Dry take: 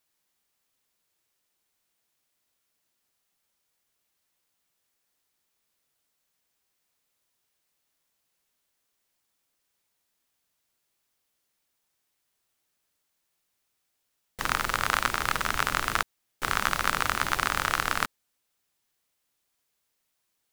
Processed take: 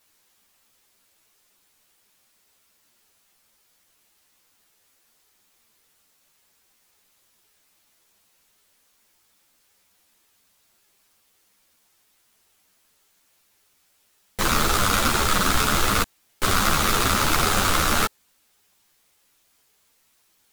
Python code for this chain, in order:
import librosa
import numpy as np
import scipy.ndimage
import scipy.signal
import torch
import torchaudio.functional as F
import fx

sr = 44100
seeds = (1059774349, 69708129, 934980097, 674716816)

p1 = fx.fold_sine(x, sr, drive_db=18, ceiling_db=-3.5)
p2 = x + F.gain(torch.from_numpy(p1), -6.5).numpy()
y = fx.ensemble(p2, sr)